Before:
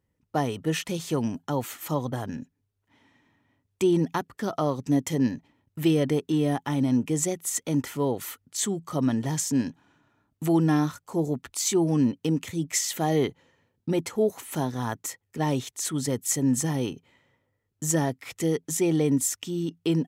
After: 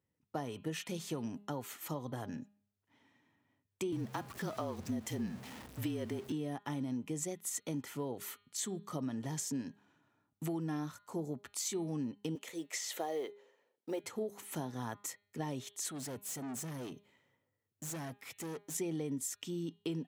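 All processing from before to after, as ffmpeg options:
-filter_complex "[0:a]asettb=1/sr,asplit=3[a][b][c];[a]atrim=end=3.924[d];[b]atrim=start=3.92:end=6.32,asetpts=PTS-STARTPTS,afade=t=in:d=0.004:c=qsin,afade=t=out:st=2.396:d=0.004:c=qsin,aeval=exprs='val(0)+0.5*0.0178*sgn(val(0))':c=same,afreqshift=-37[e];[c]atrim=start=6.316[f];[d][e]acrossfade=d=0.004:c1=hsin:c2=qsin[g];[g][f]acrossfade=d=0.004:c1=qsin:c2=hsin,asettb=1/sr,asplit=3[h][i][j];[h]atrim=end=12.354[k];[i]atrim=start=12.35:end=14.04,asetpts=PTS-STARTPTS,afade=t=in:d=0.004:c=qsin,afade=t=out:st=1.686:d=0.004:c=qsin,acrossover=split=5400[l][m];[m]acompressor=threshold=-34dB:ratio=4:attack=1:release=60[n];[l][n]amix=inputs=2:normalize=0,highpass=f=480:t=q:w=1.9,acrusher=bits=8:mode=log:mix=0:aa=0.000001[o];[j]atrim=start=14.036[p];[k][o]acrossfade=d=0.004:c1=hsin:c2=qsin[q];[q][p]acrossfade=d=0.004:c1=qsin:c2=hsin,asettb=1/sr,asplit=3[r][s][t];[r]atrim=end=15.914[u];[s]atrim=start=15.91:end=18.75,asetpts=PTS-STARTPTS,afade=t=in:d=0.004:c=qsin,afade=t=out:st=2.836:d=0.004:c=qsin,highshelf=f=11k:g=8,aeval=exprs='(tanh(39.8*val(0)+0.25)-tanh(0.25))/39.8':c=same[v];[t]atrim=start=18.746[w];[u][v]acrossfade=d=0.004:c1=hsin:c2=qsin[x];[x][w]acrossfade=d=0.004:c1=qsin:c2=hsin,highpass=100,acompressor=threshold=-27dB:ratio=6,bandreject=f=204.2:t=h:w=4,bandreject=f=408.4:t=h:w=4,bandreject=f=612.6:t=h:w=4,bandreject=f=816.8:t=h:w=4,bandreject=f=1.021k:t=h:w=4,bandreject=f=1.2252k:t=h:w=4,bandreject=f=1.4294k:t=h:w=4,bandreject=f=1.6336k:t=h:w=4,bandreject=f=1.8378k:t=h:w=4,bandreject=f=2.042k:t=h:w=4,bandreject=f=2.2462k:t=h:w=4,bandreject=f=2.4504k:t=h:w=4,bandreject=f=2.6546k:t=h:w=4,bandreject=f=2.8588k:t=h:w=4,bandreject=f=3.063k:t=h:w=4,bandreject=f=3.2672k:t=h:w=4,bandreject=f=3.4714k:t=h:w=4,bandreject=f=3.6756k:t=h:w=4,bandreject=f=3.8798k:t=h:w=4,bandreject=f=4.084k:t=h:w=4,bandreject=f=4.2882k:t=h:w=4,volume=-7.5dB"

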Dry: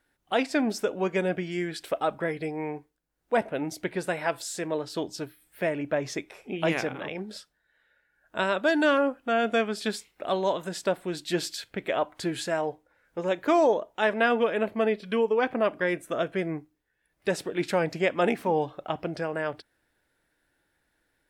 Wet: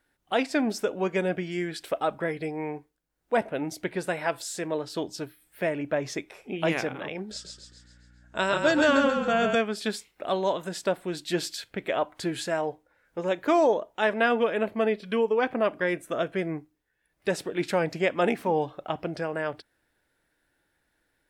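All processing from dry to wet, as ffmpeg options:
-filter_complex "[0:a]asettb=1/sr,asplit=3[a][b][c];[a]atrim=end=7.314[d];[b]atrim=start=7.31:end=9.55,asetpts=PTS-STARTPTS,afade=t=in:d=0.004:c=qsin,afade=t=out:st=2.236:d=0.004:c=qsin,asplit=7[e][f][g][h][i][j][k];[f]adelay=135,afreqshift=-32,volume=-4.5dB[l];[g]adelay=270,afreqshift=-64,volume=-10.5dB[m];[h]adelay=405,afreqshift=-96,volume=-16.5dB[n];[i]adelay=540,afreqshift=-128,volume=-22.6dB[o];[j]adelay=675,afreqshift=-160,volume=-28.6dB[p];[k]adelay=810,afreqshift=-192,volume=-34.6dB[q];[e][l][m][n][o][p][q]amix=inputs=7:normalize=0,atrim=end_sample=98784,aeval=exprs='val(0)+0.00178*(sin(2*PI*60*n/s)+sin(2*PI*2*60*n/s)/2+sin(2*PI*3*60*n/s)/3+sin(2*PI*4*60*n/s)/4+sin(2*PI*5*60*n/s)/5)':c=same,lowpass=f=7.1k:t=q:w=2.8[r];[c]atrim=start=9.546[s];[d][r]acrossfade=d=0.004:c1=hsin:c2=qsin[t];[t][s]acrossfade=d=0.004:c1=qsin:c2=hsin"

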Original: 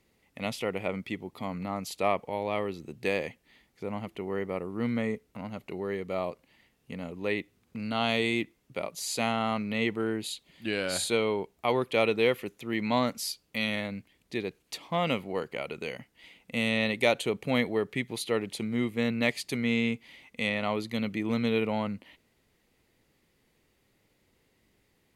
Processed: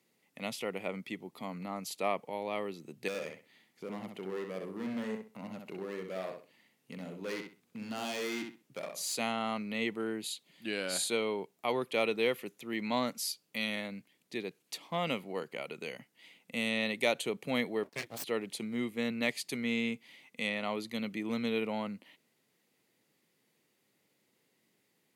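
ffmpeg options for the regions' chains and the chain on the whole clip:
-filter_complex "[0:a]asettb=1/sr,asplit=3[a][b][c];[a]atrim=end=3.084[d];[b]atrim=start=3.08:end=9.16,asetpts=PTS-STARTPTS,afade=t=in:d=0.004:c=qsin,afade=t=out:st=6.076:d=0.004:c=qsin,volume=29dB,asoftclip=hard,volume=-29dB,asplit=2[e][f];[f]adelay=64,lowpass=f=5k:p=1,volume=-5dB,asplit=2[g][h];[h]adelay=64,lowpass=f=5k:p=1,volume=0.25,asplit=2[i][j];[j]adelay=64,lowpass=f=5k:p=1,volume=0.25[k];[e][g][i][k]amix=inputs=4:normalize=0,atrim=end_sample=268128[l];[c]atrim=start=9.156[m];[d][l]acrossfade=d=0.004:c1=hsin:c2=qsin[n];[n][m]acrossfade=d=0.004:c1=qsin:c2=hsin,asettb=1/sr,asplit=3[o][p][q];[o]atrim=end=17.834[r];[p]atrim=start=17.83:end=18.24,asetpts=PTS-STARTPTS,afade=t=in:d=0.004:c=qsin,afade=t=out:st=0.406:d=0.004:c=qsin,agate=range=-9dB:threshold=-45dB:ratio=16:release=100:detection=peak,asplit=2[s][t];[t]adelay=26,volume=-6.5dB[u];[s][u]amix=inputs=2:normalize=0,atrim=end_sample=18081,aeval=exprs='abs(val(0))':c=same[v];[q]atrim=start=18.236[w];[r][v]acrossfade=d=0.004:c1=hsin:c2=qsin[x];[x][w]acrossfade=d=0.004:c1=qsin:c2=hsin,highpass=f=140:w=0.5412,highpass=f=140:w=1.3066,highshelf=f=4.4k:g=5.5,volume=-5.5dB"

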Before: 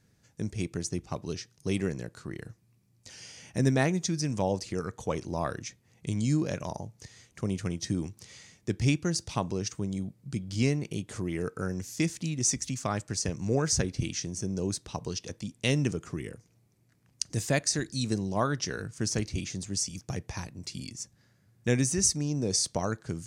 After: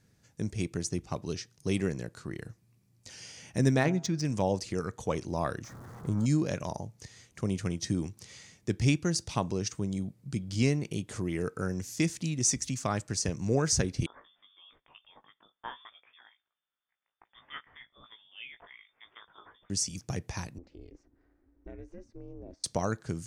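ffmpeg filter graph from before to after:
-filter_complex "[0:a]asettb=1/sr,asplit=3[a][b][c];[a]atrim=end=3.794[d];[b]atrim=start=3.79:end=4.25,asetpts=PTS-STARTPTS,afade=t=in:d=0.004:c=qsin,afade=t=out:st=0.456:d=0.004:c=qsin,adynamicsmooth=sensitivity=2.5:basefreq=4k,bandreject=f=134:t=h:w=4,bandreject=f=268:t=h:w=4,bandreject=f=402:t=h:w=4,bandreject=f=536:t=h:w=4,bandreject=f=670:t=h:w=4,bandreject=f=804:t=h:w=4,bandreject=f=938:t=h:w=4,bandreject=f=1.072k:t=h:w=4,bandreject=f=1.206k:t=h:w=4,bandreject=f=1.34k:t=h:w=4,bandreject=f=1.474k:t=h:w=4,bandreject=f=1.608k:t=h:w=4[e];[c]atrim=start=4.246[f];[d][e]acrossfade=d=0.004:c1=hsin:c2=qsin[g];[g][f]acrossfade=d=0.004:c1=qsin:c2=hsin,asettb=1/sr,asplit=3[h][i][j];[h]atrim=end=5.644[k];[i]atrim=start=5.64:end=6.26,asetpts=PTS-STARTPTS,afade=t=in:d=0.004:c=qsin,afade=t=out:st=0.616:d=0.004:c=qsin,aeval=exprs='val(0)+0.5*0.00944*sgn(val(0))':c=same,highshelf=f=1.8k:t=q:w=3:g=-11.5[l];[j]atrim=start=6.256[m];[k][l]acrossfade=d=0.004:c1=hsin:c2=qsin[n];[n][m]acrossfade=d=0.004:c1=qsin:c2=hsin,asettb=1/sr,asplit=3[o][p][q];[o]atrim=end=14.064[r];[p]atrim=start=14.06:end=19.7,asetpts=PTS-STARTPTS,afade=t=in:d=0.004:c=qsin,afade=t=out:st=5.636:d=0.004:c=qsin,aderivative,asplit=2[s][t];[t]adelay=18,volume=-6dB[u];[s][u]amix=inputs=2:normalize=0,atrim=end_sample=248724,lowpass=f=3.1k:t=q:w=0.5098,lowpass=f=3.1k:t=q:w=0.6013,lowpass=f=3.1k:t=q:w=0.9,lowpass=f=3.1k:t=q:w=2.563,afreqshift=-3700[v];[q]atrim=start=19.696[w];[r][v]acrossfade=d=0.004:c1=hsin:c2=qsin[x];[x][w]acrossfade=d=0.004:c1=qsin:c2=hsin,asettb=1/sr,asplit=3[y][z][aa];[y]atrim=end=20.584[ab];[z]atrim=start=20.58:end=22.64,asetpts=PTS-STARTPTS,afade=t=in:d=0.004:c=qsin,afade=t=out:st=2.056:d=0.004:c=qsin,acompressor=threshold=-40dB:ratio=5:attack=3.2:release=140:knee=1:detection=peak,lowpass=1.3k,aeval=exprs='val(0)*sin(2*PI*170*n/s)':c=same[ac];[aa]atrim=start=22.636[ad];[ab][ac]acrossfade=d=0.004:c1=hsin:c2=qsin[ae];[ae][ad]acrossfade=d=0.004:c1=qsin:c2=hsin"

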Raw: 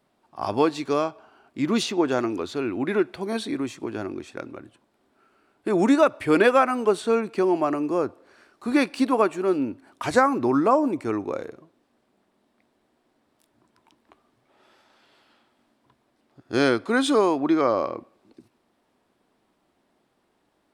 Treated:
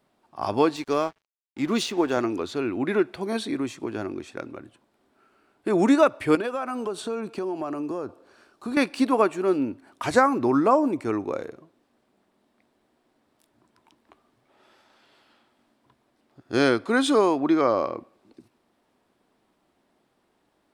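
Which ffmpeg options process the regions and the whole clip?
-filter_complex "[0:a]asettb=1/sr,asplit=3[a][b][c];[a]atrim=end=0.764[d];[b]atrim=start=0.76:end=2.17,asetpts=PTS-STARTPTS,afade=t=in:d=0.004:c=qsin,afade=t=out:st=1.406:d=0.004:c=qsin,highpass=f=150:p=1,aeval=exprs='sgn(val(0))*max(abs(val(0))-0.00596,0)':c=same[e];[c]atrim=start=2.166[f];[d][e]acrossfade=d=0.004:c1=hsin:c2=qsin[g];[g][f]acrossfade=d=0.004:c1=qsin:c2=hsin,asettb=1/sr,asplit=3[h][i][j];[h]atrim=end=6.354[k];[i]atrim=start=6.35:end=8.77,asetpts=PTS-STARTPTS,afade=t=in:d=0.004:c=qsin,afade=t=out:st=2.416:d=0.004:c=qsin,equalizer=f=2k:w=3.6:g=-7,acompressor=threshold=-27dB:ratio=4:attack=3.2:release=140:knee=1:detection=peak[l];[j]atrim=start=8.766[m];[k][l]acrossfade=d=0.004:c1=hsin:c2=qsin[n];[n][m]acrossfade=d=0.004:c1=qsin:c2=hsin"

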